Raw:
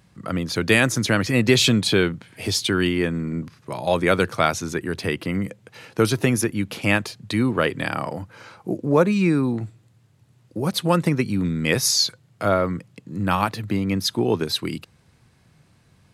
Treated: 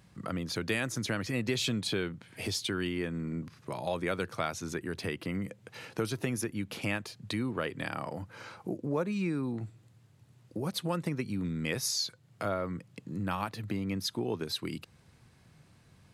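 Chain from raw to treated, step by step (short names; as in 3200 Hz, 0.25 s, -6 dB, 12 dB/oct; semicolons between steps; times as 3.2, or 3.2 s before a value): compressor 2:1, threshold -34 dBFS, peak gain reduction 12.5 dB; gain -3 dB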